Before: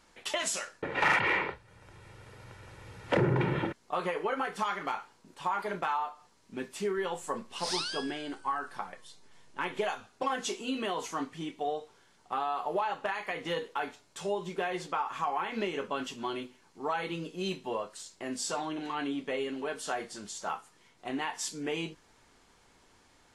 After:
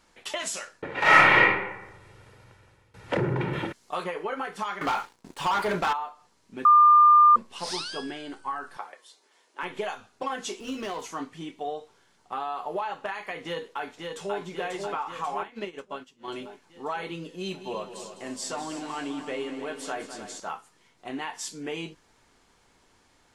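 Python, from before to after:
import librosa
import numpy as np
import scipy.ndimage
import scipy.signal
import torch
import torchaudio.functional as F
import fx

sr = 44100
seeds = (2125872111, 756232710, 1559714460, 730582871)

y = fx.reverb_throw(x, sr, start_s=1.01, length_s=0.4, rt60_s=0.97, drr_db=-9.5)
y = fx.high_shelf(y, sr, hz=3100.0, db=9.5, at=(3.53, 4.04))
y = fx.leveller(y, sr, passes=3, at=(4.81, 5.93))
y = fx.highpass(y, sr, hz=330.0, slope=24, at=(8.77, 9.63))
y = fx.running_max(y, sr, window=5, at=(10.6, 11.02))
y = fx.echo_throw(y, sr, start_s=13.43, length_s=0.97, ms=540, feedback_pct=65, wet_db=-3.5)
y = fx.upward_expand(y, sr, threshold_db=-43.0, expansion=2.5, at=(15.43, 16.28))
y = fx.echo_heads(y, sr, ms=102, heads='second and third', feedback_pct=55, wet_db=-11.5, at=(17.33, 20.4))
y = fx.edit(y, sr, fx.fade_out_to(start_s=2.18, length_s=0.76, floor_db=-19.5),
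    fx.bleep(start_s=6.65, length_s=0.71, hz=1200.0, db=-12.0), tone=tone)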